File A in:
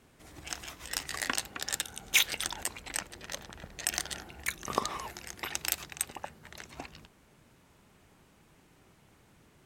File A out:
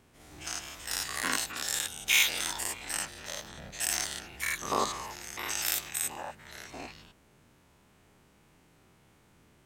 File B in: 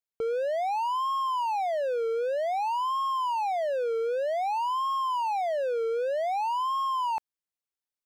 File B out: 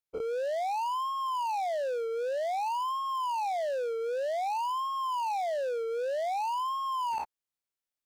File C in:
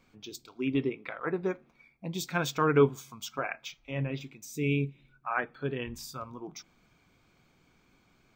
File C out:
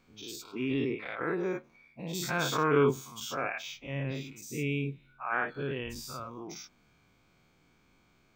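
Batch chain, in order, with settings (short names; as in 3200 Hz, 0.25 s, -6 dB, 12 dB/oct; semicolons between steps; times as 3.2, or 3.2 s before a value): spectral dilation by 0.12 s; gain -5.5 dB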